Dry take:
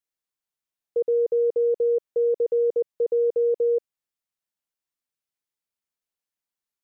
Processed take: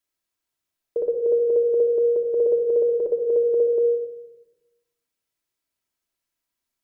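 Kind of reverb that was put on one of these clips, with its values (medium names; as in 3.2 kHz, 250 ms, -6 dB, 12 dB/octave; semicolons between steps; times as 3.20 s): simulated room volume 3800 m³, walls furnished, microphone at 2.9 m; trim +4.5 dB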